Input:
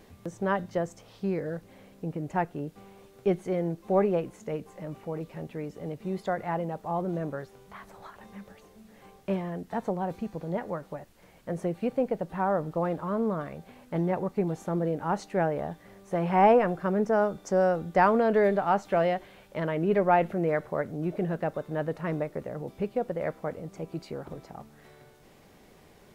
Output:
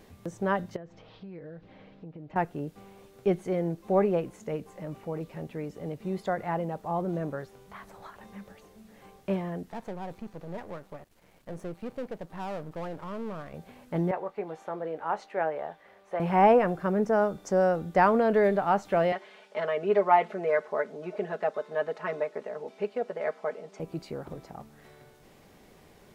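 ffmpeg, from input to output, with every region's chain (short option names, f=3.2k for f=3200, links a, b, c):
-filter_complex "[0:a]asettb=1/sr,asplit=3[a][b][c];[a]atrim=end=0.764[d];[b]atrim=start=0.76:end=2.36,asetpts=PTS-STARTPTS,afade=t=in:d=0.004:c=qsin,afade=t=out:st=1.596:d=0.004:c=qsin,lowpass=f=4.1k:w=0.5412,lowpass=f=4.1k:w=1.3066,aecho=1:1:6.4:0.39,atrim=end_sample=70560,acompressor=threshold=-42dB:ratio=5:attack=3.2:release=140:knee=1:detection=peak[e];[c]atrim=start=2.356[f];[d][e]acrossfade=d=0.004:c1=hsin:c2=qsin[g];[g][f]acrossfade=d=0.004:c1=qsin:c2=hsin,asettb=1/sr,asplit=3[h][i][j];[h]atrim=end=9.704[k];[i]atrim=start=9.7:end=13.54,asetpts=PTS-STARTPTS,afade=t=in:d=0.004:c=qsin,afade=t=out:st=3.836:d=0.004:c=qsin,aeval=exprs='if(lt(val(0),0),0.251*val(0),val(0))':c=same,aeval=exprs='(tanh(17.8*val(0)+0.35)-tanh(0.35))/17.8':c=same[l];[j]atrim=start=13.536[m];[k][l]acrossfade=d=0.004:c1=hsin:c2=qsin[n];[n][m]acrossfade=d=0.004:c1=qsin:c2=hsin,asettb=1/sr,asplit=3[o][p][q];[o]atrim=end=14.114[r];[p]atrim=start=14.11:end=16.2,asetpts=PTS-STARTPTS,afade=t=in:d=0.004:c=qsin,afade=t=out:st=2.086:d=0.004:c=qsin,acrossover=split=420 3800:gain=0.112 1 0.2[s][t][u];[s][t][u]amix=inputs=3:normalize=0,asplit=2[v][w];[w]adelay=19,volume=-12dB[x];[v][x]amix=inputs=2:normalize=0,atrim=end_sample=92169[y];[q]atrim=start=16.196[z];[r][y]acrossfade=d=0.004:c1=hsin:c2=qsin[aa];[aa][z]acrossfade=d=0.004:c1=qsin:c2=hsin,asettb=1/sr,asplit=3[ab][ac][ad];[ab]atrim=end=19.124[ae];[ac]atrim=start=19.12:end=23.8,asetpts=PTS-STARTPTS,afade=t=in:d=0.004:c=qsin,afade=t=out:st=4.676:d=0.004:c=qsin,highpass=430,lowpass=6.3k,aecho=1:1:4.7:0.84,atrim=end_sample=206388[af];[ad]atrim=start=23.796[ag];[ae][af]acrossfade=d=0.004:c1=hsin:c2=qsin[ah];[ah][ag]acrossfade=d=0.004:c1=qsin:c2=hsin"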